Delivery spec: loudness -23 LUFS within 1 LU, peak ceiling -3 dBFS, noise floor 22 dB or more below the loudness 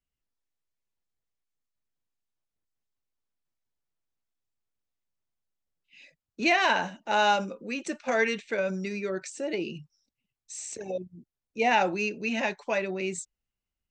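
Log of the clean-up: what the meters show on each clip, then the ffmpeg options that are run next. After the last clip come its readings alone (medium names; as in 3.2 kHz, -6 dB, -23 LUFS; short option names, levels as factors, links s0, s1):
loudness -28.0 LUFS; peak level -11.0 dBFS; loudness target -23.0 LUFS
-> -af "volume=1.78"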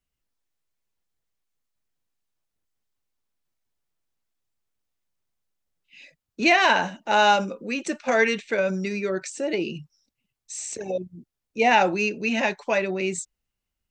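loudness -23.0 LUFS; peak level -6.0 dBFS; noise floor -84 dBFS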